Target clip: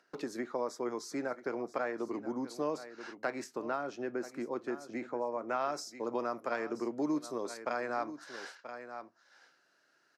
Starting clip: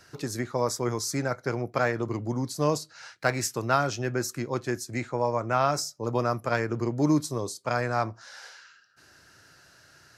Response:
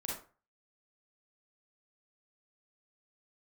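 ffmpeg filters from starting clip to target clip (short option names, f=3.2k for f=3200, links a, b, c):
-af "agate=range=-54dB:threshold=-46dB:ratio=16:detection=peak,highpass=f=230:w=0.5412,highpass=f=230:w=1.3066,acompressor=mode=upward:threshold=-38dB:ratio=2.5,aecho=1:1:980:0.15,acompressor=threshold=-36dB:ratio=2,asetnsamples=n=441:p=0,asendcmd='3.44 lowpass f 1100;5.49 lowpass f 3200',lowpass=f=1.8k:p=1"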